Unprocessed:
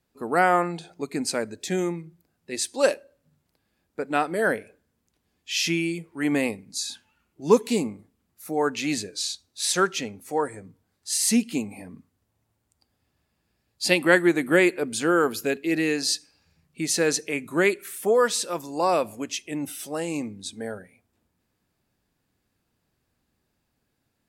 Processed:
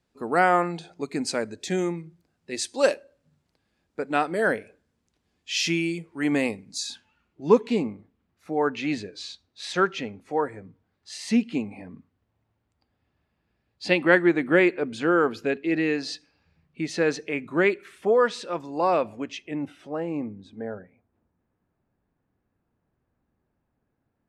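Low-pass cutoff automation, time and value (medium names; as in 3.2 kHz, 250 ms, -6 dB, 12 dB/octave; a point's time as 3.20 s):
6.86 s 7.4 kHz
7.57 s 3 kHz
19.31 s 3 kHz
20.04 s 1.4 kHz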